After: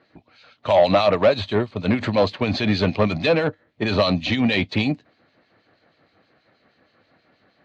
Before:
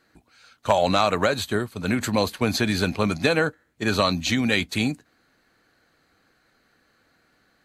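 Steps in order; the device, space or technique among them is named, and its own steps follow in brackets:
guitar amplifier with harmonic tremolo (two-band tremolo in antiphase 6.3 Hz, depth 70%, crossover 2,400 Hz; soft clipping −19.5 dBFS, distortion −12 dB; loudspeaker in its box 95–4,200 Hz, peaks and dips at 100 Hz +5 dB, 610 Hz +6 dB, 1,500 Hz −7 dB)
level +8 dB

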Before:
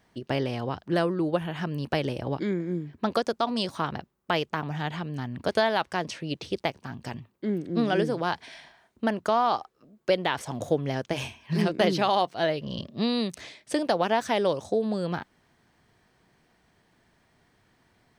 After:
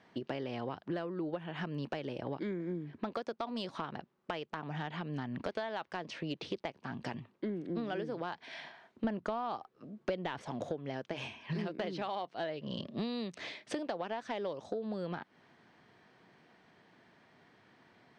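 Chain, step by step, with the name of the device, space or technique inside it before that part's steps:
AM radio (band-pass filter 160–4,000 Hz; downward compressor 8 to 1, threshold −37 dBFS, peak gain reduction 18.5 dB; soft clipping −26 dBFS, distortion −23 dB)
0:09.04–0:10.48: low-shelf EQ 220 Hz +11.5 dB
level +3 dB

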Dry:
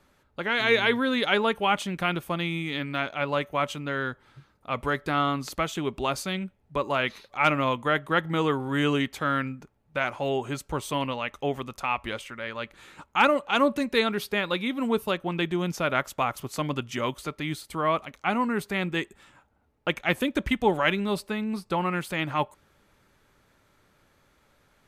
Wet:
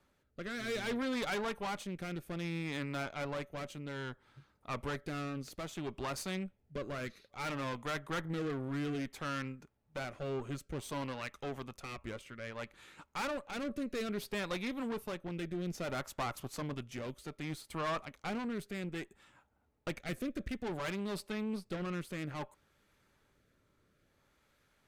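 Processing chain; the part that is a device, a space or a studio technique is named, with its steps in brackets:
dynamic equaliser 3,100 Hz, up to −6 dB, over −44 dBFS, Q 3.5
overdriven rotary cabinet (tube saturation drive 29 dB, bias 0.7; rotating-speaker cabinet horn 0.6 Hz)
level −2.5 dB

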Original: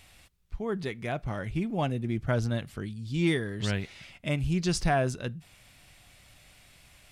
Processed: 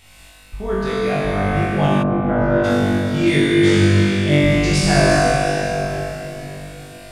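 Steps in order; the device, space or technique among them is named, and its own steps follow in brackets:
tunnel (flutter between parallel walls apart 3.5 metres, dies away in 1.3 s; convolution reverb RT60 3.9 s, pre-delay 56 ms, DRR −2.5 dB)
0:02.02–0:02.63: low-pass filter 1,000 Hz → 1,700 Hz 12 dB per octave
level +3.5 dB

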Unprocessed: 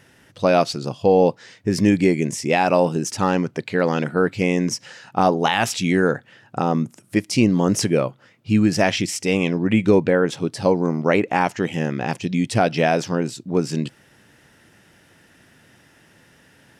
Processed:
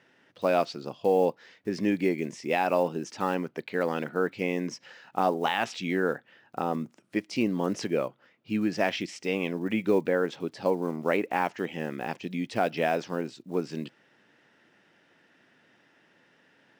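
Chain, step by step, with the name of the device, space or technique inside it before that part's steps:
early digital voice recorder (band-pass filter 230–4,000 Hz; one scale factor per block 7 bits)
level −7.5 dB

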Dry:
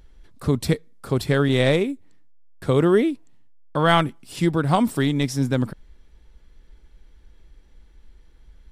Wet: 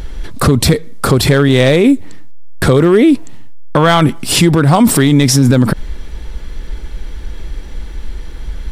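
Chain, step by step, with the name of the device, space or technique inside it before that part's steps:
loud club master (downward compressor 2.5 to 1, threshold −23 dBFS, peak gain reduction 8 dB; hard clipping −17 dBFS, distortion −21 dB; boost into a limiter +27 dB)
level −1 dB

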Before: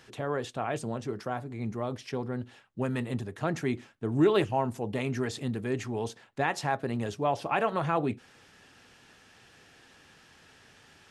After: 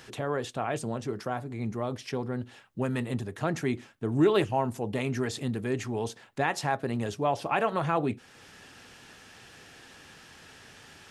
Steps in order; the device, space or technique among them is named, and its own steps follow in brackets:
high-shelf EQ 8,600 Hz +4.5 dB
parallel compression (in parallel at −1 dB: downward compressor, threshold −47 dBFS, peak gain reduction 26 dB)

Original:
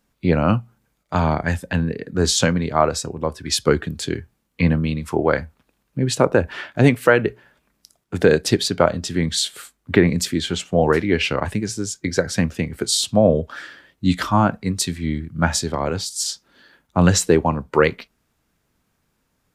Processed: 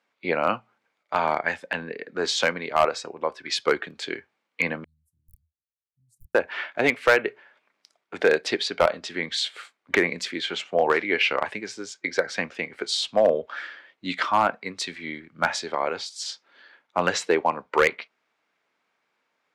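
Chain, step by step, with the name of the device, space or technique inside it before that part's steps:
megaphone (band-pass filter 540–3,700 Hz; parametric band 2,200 Hz +5.5 dB 0.23 octaves; hard clipping −10 dBFS, distortion −17 dB)
0:04.84–0:06.35: inverse Chebyshev band-stop filter 400–3,000 Hz, stop band 80 dB

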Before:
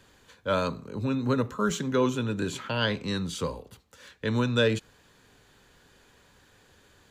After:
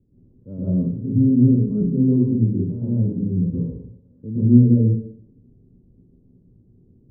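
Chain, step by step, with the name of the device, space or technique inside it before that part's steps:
next room (low-pass filter 320 Hz 24 dB per octave; convolution reverb RT60 0.70 s, pre-delay 113 ms, DRR −10 dB)

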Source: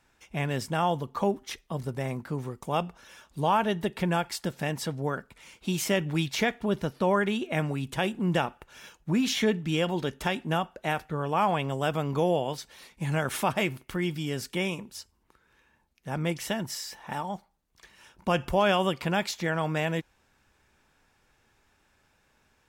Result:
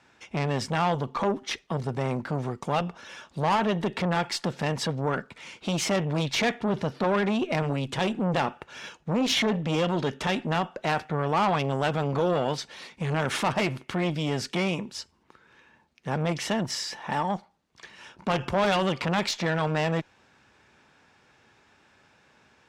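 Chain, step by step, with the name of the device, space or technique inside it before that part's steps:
valve radio (band-pass filter 110–5,700 Hz; tube saturation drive 25 dB, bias 0.25; saturating transformer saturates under 530 Hz)
level +8.5 dB

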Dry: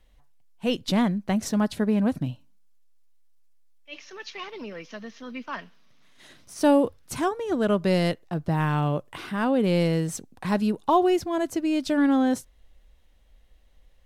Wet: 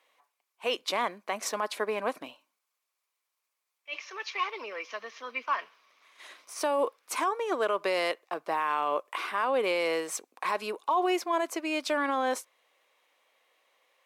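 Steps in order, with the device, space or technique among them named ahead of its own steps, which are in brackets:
laptop speaker (high-pass filter 410 Hz 24 dB per octave; parametric band 1,100 Hz +10 dB 0.44 octaves; parametric band 2,300 Hz +8 dB 0.35 octaves; brickwall limiter −18.5 dBFS, peak gain reduction 13 dB)

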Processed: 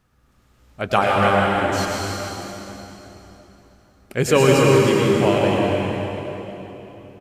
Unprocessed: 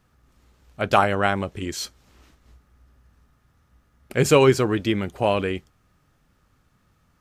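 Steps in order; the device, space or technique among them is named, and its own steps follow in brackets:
cave (single-tap delay 313 ms −9.5 dB; convolution reverb RT60 3.5 s, pre-delay 97 ms, DRR −3 dB)
level −1 dB

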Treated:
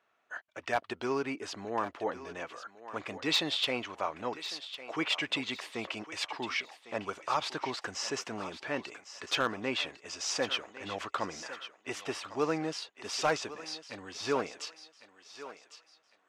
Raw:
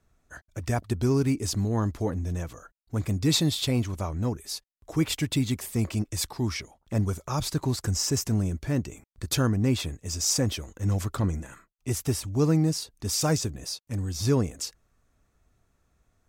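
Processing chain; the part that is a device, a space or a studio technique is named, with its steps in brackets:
megaphone (band-pass filter 680–2,800 Hz; parametric band 2,900 Hz +5.5 dB 0.37 octaves; hard clipping −24 dBFS, distortion −21 dB)
0:01.21–0:02.09: parametric band 4,300 Hz −3.5 dB 2.8 octaves
feedback echo with a high-pass in the loop 1,103 ms, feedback 32%, high-pass 520 Hz, level −12 dB
level +4.5 dB

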